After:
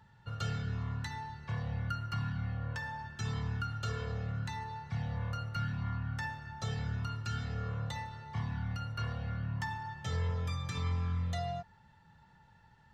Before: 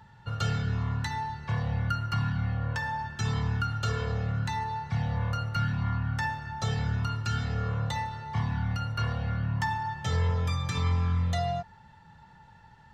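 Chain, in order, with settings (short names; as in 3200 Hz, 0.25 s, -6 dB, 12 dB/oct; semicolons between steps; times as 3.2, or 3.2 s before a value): bell 880 Hz -3 dB 0.36 oct; gain -7 dB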